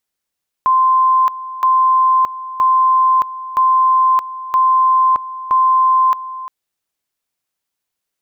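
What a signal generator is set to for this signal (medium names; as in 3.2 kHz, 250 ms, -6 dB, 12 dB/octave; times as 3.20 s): two-level tone 1.04 kHz -9 dBFS, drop 15.5 dB, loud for 0.62 s, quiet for 0.35 s, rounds 6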